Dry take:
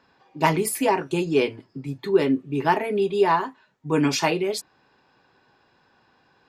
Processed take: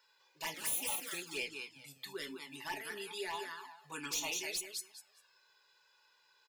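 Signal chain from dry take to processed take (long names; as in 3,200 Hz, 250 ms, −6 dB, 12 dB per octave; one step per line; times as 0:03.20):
0:00.54–0:01.11: lower of the sound and its delayed copy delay 3.7 ms
first difference
in parallel at +1 dB: downward compressor 10 to 1, threshold −49 dBFS, peak gain reduction 25 dB
on the sum: repeating echo 201 ms, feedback 23%, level −5.5 dB
hard clipping −29 dBFS, distortion −9 dB
flanger swept by the level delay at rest 2.1 ms, full sweep at −31 dBFS
tuned comb filter 860 Hz, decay 0.31 s, mix 70%
level +9.5 dB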